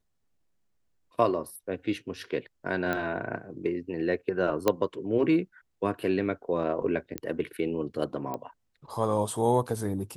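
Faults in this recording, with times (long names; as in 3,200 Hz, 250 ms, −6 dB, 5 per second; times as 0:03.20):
0:02.93: click −16 dBFS
0:04.68: click −9 dBFS
0:07.18: click −16 dBFS
0:08.34: click −20 dBFS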